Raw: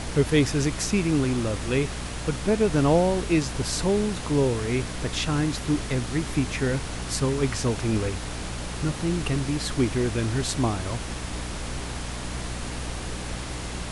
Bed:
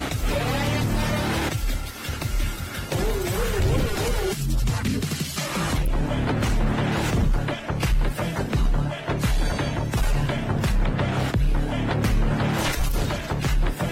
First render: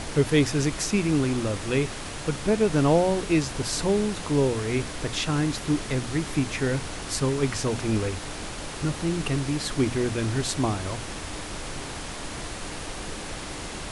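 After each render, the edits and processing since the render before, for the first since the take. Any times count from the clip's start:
mains-hum notches 60/120/180/240 Hz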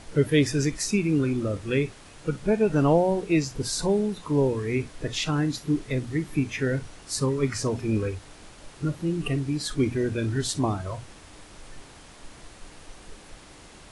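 noise reduction from a noise print 13 dB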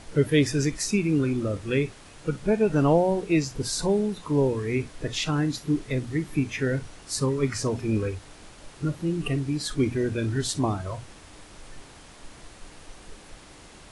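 no processing that can be heard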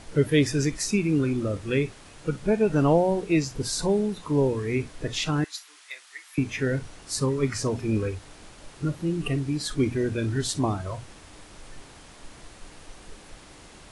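0:05.44–0:06.38: Bessel high-pass filter 1,500 Hz, order 4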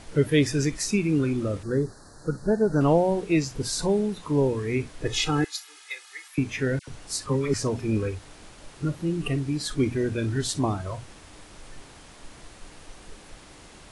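0:01.63–0:02.81: elliptic band-stop filter 1,700–4,200 Hz
0:05.05–0:06.28: comb filter 2.4 ms, depth 99%
0:06.79–0:07.54: all-pass dispersion lows, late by 87 ms, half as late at 1,300 Hz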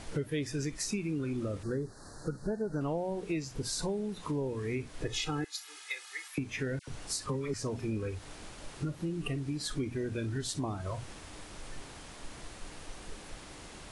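downward compressor 4 to 1, threshold −33 dBFS, peak gain reduction 15 dB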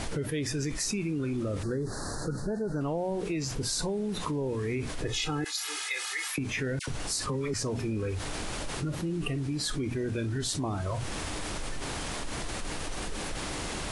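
envelope flattener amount 70%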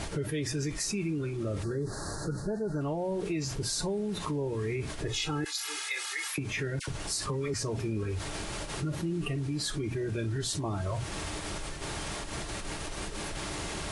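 notch comb filter 250 Hz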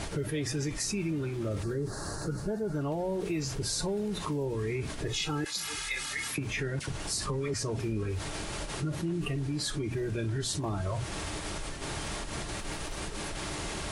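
mix in bed −27 dB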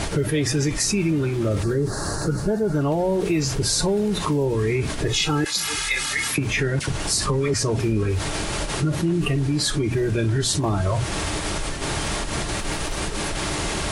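level +10.5 dB

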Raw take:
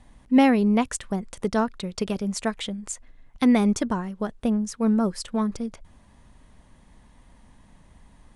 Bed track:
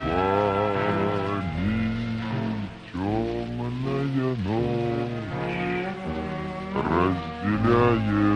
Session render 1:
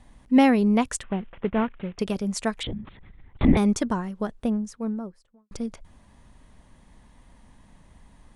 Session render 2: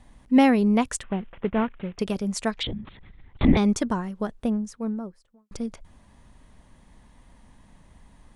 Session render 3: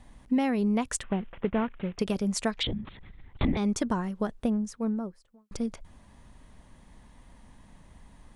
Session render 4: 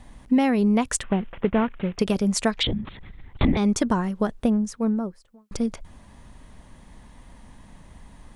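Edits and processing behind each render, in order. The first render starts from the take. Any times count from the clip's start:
0:01.03–0:01.99: variable-slope delta modulation 16 kbit/s; 0:02.63–0:03.57: linear-prediction vocoder at 8 kHz whisper; 0:04.12–0:05.51: fade out and dull
0:02.51–0:03.65: low-pass with resonance 4,600 Hz, resonance Q 1.8
downward compressor 12 to 1, threshold −22 dBFS, peak gain reduction 11 dB
level +6 dB

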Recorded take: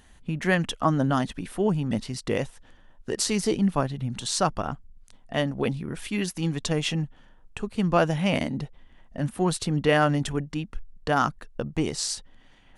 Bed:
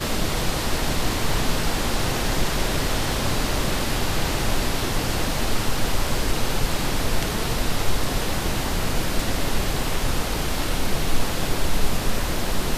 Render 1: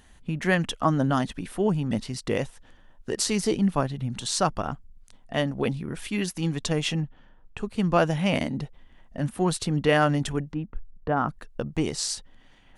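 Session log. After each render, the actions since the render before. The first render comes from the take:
0:07.00–0:07.58: high-frequency loss of the air 140 metres
0:10.53–0:11.29: Bessel low-pass filter 1,100 Hz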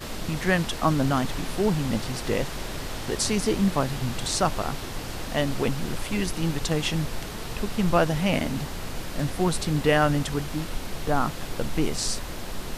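mix in bed −10 dB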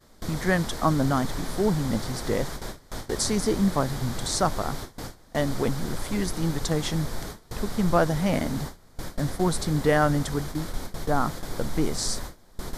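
noise gate with hold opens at −21 dBFS
parametric band 2,700 Hz −14 dB 0.35 octaves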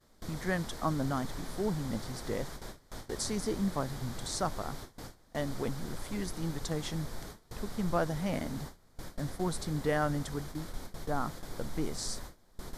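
level −9 dB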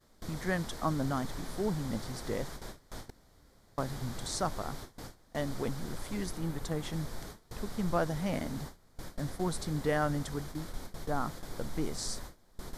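0:03.10–0:03.78: fill with room tone
0:06.37–0:06.93: parametric band 5,400 Hz −5.5 dB 1.4 octaves

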